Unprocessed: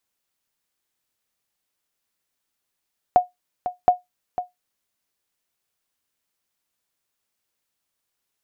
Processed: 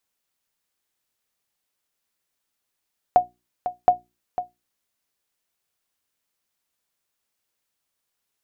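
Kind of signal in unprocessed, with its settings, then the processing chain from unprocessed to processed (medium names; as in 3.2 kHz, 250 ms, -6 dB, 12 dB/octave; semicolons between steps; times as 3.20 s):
sonar ping 722 Hz, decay 0.16 s, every 0.72 s, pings 2, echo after 0.50 s, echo -11.5 dB -5.5 dBFS
hum notches 60/120/180/240/300/360 Hz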